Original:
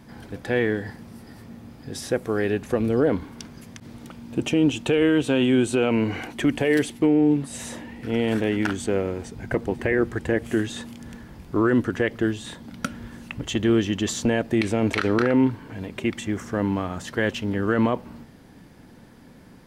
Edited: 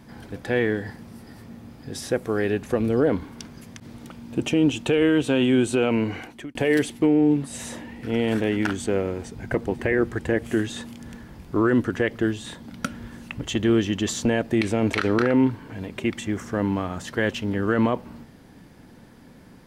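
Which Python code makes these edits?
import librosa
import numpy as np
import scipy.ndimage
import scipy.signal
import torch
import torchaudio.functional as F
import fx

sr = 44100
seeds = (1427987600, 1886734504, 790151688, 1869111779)

y = fx.edit(x, sr, fx.fade_out_span(start_s=5.77, length_s=0.78, curve='qsin'), tone=tone)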